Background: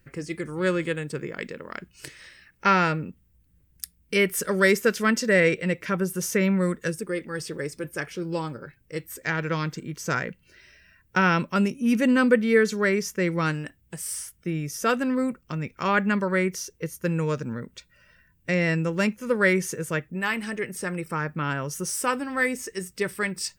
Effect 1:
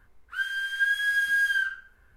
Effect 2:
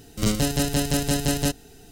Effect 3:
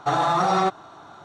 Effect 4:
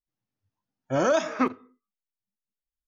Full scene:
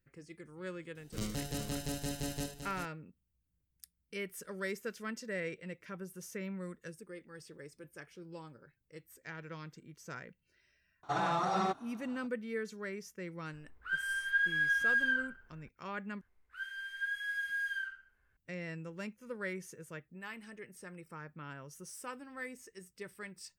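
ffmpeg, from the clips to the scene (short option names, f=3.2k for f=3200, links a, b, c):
-filter_complex "[1:a]asplit=2[a][b];[0:a]volume=-19dB[c];[2:a]aecho=1:1:76|390:0.282|0.398[d];[a]lowpass=f=1.6k:p=1[e];[b]equalizer=f=2.1k:w=1.8:g=6[f];[c]asplit=2[g][h];[g]atrim=end=16.214[i];[f]atrim=end=2.16,asetpts=PTS-STARTPTS,volume=-15.5dB[j];[h]atrim=start=18.366[k];[d]atrim=end=1.91,asetpts=PTS-STARTPTS,volume=-16dB,afade=t=in:d=0.004:c=hsin,afade=t=out:st=1.906:d=0.004:c=hsin,adelay=950[l];[3:a]atrim=end=1.24,asetpts=PTS-STARTPTS,volume=-12dB,afade=t=in:d=0.004:c=hsin,afade=t=out:st=1.236:d=0.004:c=hsin,adelay=11030[m];[e]atrim=end=2.16,asetpts=PTS-STARTPTS,volume=-2.5dB,afade=t=in:d=0.004:c=hsin,afade=t=out:st=2.156:d=0.004:c=hsin,adelay=13530[n];[i][j]acrossfade=d=0.004:c1=hsin:c2=hsin[o];[o][k]acrossfade=d=0.004:c1=hsin:c2=hsin[p];[p][l][m][n]amix=inputs=4:normalize=0"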